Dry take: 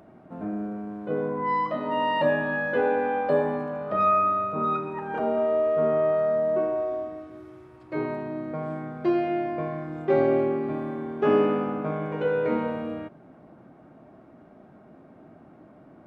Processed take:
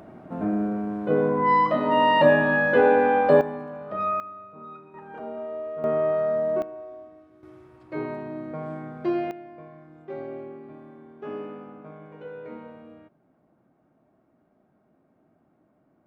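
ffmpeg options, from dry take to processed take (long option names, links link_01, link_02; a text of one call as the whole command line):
ffmpeg -i in.wav -af "asetnsamples=nb_out_samples=441:pad=0,asendcmd='3.41 volume volume -5dB;4.2 volume volume -16.5dB;4.94 volume volume -10dB;5.84 volume volume -0.5dB;6.62 volume volume -12dB;7.43 volume volume -2dB;9.31 volume volume -14.5dB',volume=6dB" out.wav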